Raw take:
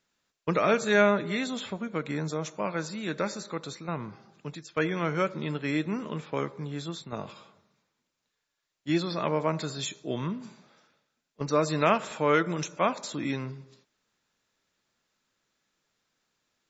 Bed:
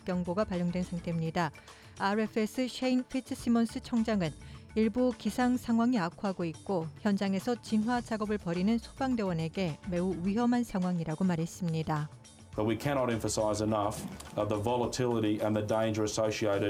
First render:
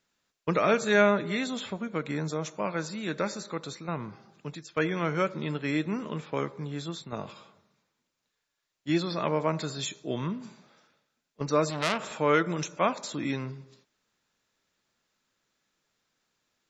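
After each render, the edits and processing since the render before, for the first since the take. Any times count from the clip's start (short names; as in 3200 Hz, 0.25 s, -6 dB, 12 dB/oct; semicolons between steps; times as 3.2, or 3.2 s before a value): 11.7–12.19 core saturation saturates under 3200 Hz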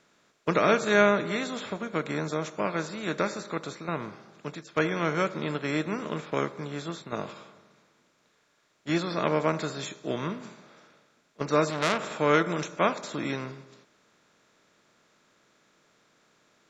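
per-bin compression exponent 0.6; upward expander 1.5:1, over -41 dBFS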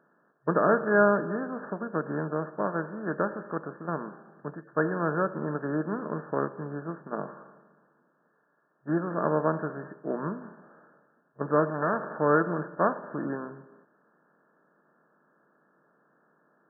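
FFT band-pass 130–1800 Hz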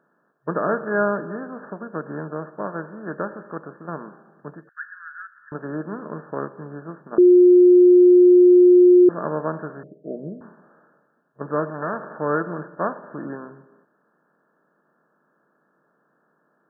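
4.69–5.52 elliptic high-pass 1500 Hz, stop band 50 dB; 7.18–9.09 bleep 358 Hz -8 dBFS; 9.83–10.41 steep low-pass 670 Hz 72 dB/oct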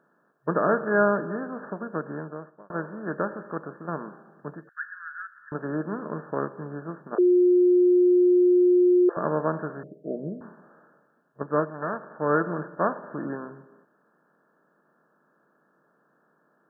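1.91–2.7 fade out; 7.15–9.17 steep high-pass 390 Hz 48 dB/oct; 11.43–12.35 upward expander, over -35 dBFS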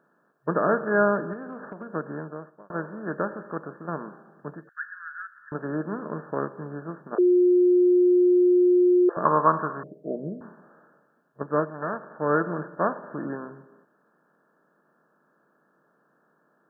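1.33–1.94 compressor, threshold -33 dBFS; 9.25–10.16 bell 1100 Hz +14.5 dB 0.56 oct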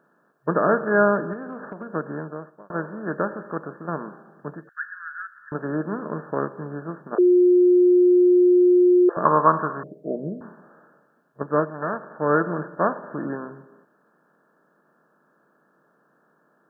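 gain +3 dB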